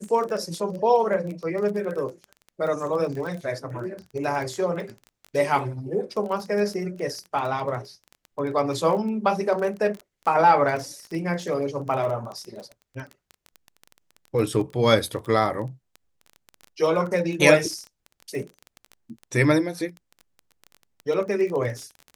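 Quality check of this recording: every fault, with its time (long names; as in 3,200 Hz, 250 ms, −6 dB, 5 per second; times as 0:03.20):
surface crackle 18 per second −30 dBFS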